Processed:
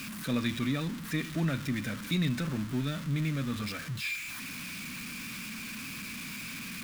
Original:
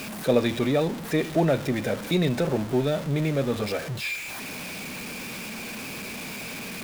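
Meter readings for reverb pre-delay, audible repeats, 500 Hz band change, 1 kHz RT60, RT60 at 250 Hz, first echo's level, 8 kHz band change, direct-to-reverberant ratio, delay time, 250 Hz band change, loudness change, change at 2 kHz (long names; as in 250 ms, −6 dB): no reverb audible, no echo audible, −18.0 dB, no reverb audible, no reverb audible, no echo audible, −4.0 dB, no reverb audible, no echo audible, −5.5 dB, −6.5 dB, −4.0 dB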